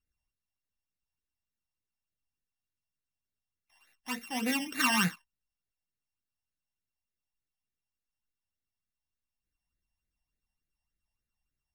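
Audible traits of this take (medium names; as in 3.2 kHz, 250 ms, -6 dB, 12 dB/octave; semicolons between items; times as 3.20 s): a buzz of ramps at a fixed pitch in blocks of 16 samples; phasing stages 12, 3.4 Hz, lowest notch 400–1000 Hz; Vorbis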